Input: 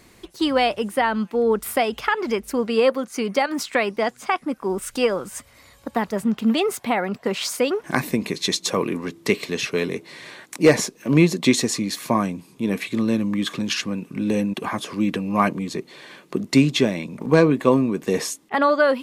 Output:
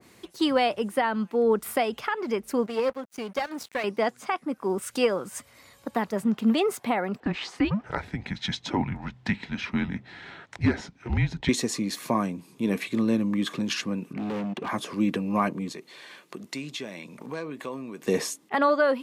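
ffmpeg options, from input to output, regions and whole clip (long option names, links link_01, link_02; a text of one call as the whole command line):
ffmpeg -i in.wav -filter_complex "[0:a]asettb=1/sr,asplit=3[link_01][link_02][link_03];[link_01]atrim=end=2.664[link_04];[link_02]atrim=start=2.66:end=3.84,asetpts=PTS-STARTPTS,afade=type=in:duration=0.004:curve=qsin,afade=type=out:start_time=1.176:duration=0.004:curve=qsin,aeval=exprs='(tanh(4.47*val(0)+0.8)-tanh(0.8))/4.47':channel_layout=same,aeval=exprs='sgn(val(0))*max(abs(val(0))-0.00794,0)':channel_layout=same[link_05];[link_03]atrim=start=3.836[link_06];[link_04][link_05]acrossfade=duration=0.004:curve1=hsin:curve2=qsin[link_07];[link_07][link_06]acrossfade=duration=0.004:curve1=qsin:curve2=hsin,asettb=1/sr,asplit=3[link_08][link_09][link_10];[link_08]atrim=end=7.204[link_11];[link_09]atrim=start=7.2:end=11.49,asetpts=PTS-STARTPTS,afade=type=in:duration=0.004:curve=qsin,afade=type=out:start_time=4.286:duration=0.004:curve=qsin,lowpass=3400,afreqshift=-210[link_12];[link_10]atrim=start=11.486[link_13];[link_11][link_12]acrossfade=duration=0.004:curve1=hsin:curve2=qsin[link_14];[link_14][link_13]acrossfade=duration=0.004:curve1=qsin:curve2=hsin,asettb=1/sr,asplit=3[link_15][link_16][link_17];[link_15]atrim=end=14.134[link_18];[link_16]atrim=start=14.13:end=14.69,asetpts=PTS-STARTPTS,afade=type=in:duration=0.004:curve=qsin,afade=type=out:start_time=0.556:duration=0.004:curve=qsin,lowpass=3000,volume=25.5dB,asoftclip=hard,volume=-25.5dB[link_19];[link_17]atrim=start=14.686[link_20];[link_18][link_19]acrossfade=duration=0.004:curve1=hsin:curve2=qsin[link_21];[link_21][link_20]acrossfade=duration=0.004:curve1=qsin:curve2=hsin,asettb=1/sr,asplit=3[link_22][link_23][link_24];[link_22]atrim=end=15.724[link_25];[link_23]atrim=start=15.72:end=18.05,asetpts=PTS-STARTPTS,afade=type=in:duration=0.004:curve=qsin,afade=type=out:start_time=2.326:duration=0.004:curve=qsin,lowshelf=frequency=490:gain=-10,acompressor=threshold=-33dB:ratio=2.5:attack=3.2:release=140:knee=1:detection=peak[link_26];[link_24]atrim=start=18.046[link_27];[link_25][link_26]acrossfade=duration=0.004:curve1=hsin:curve2=qsin[link_28];[link_28][link_27]acrossfade=duration=0.004:curve1=qsin:curve2=hsin,alimiter=limit=-9dB:level=0:latency=1:release=424,highpass=100,adynamicequalizer=threshold=0.0126:dfrequency=1800:dqfactor=0.7:tfrequency=1800:tqfactor=0.7:attack=5:release=100:ratio=0.375:range=2.5:mode=cutabove:tftype=highshelf,volume=-2.5dB" out.wav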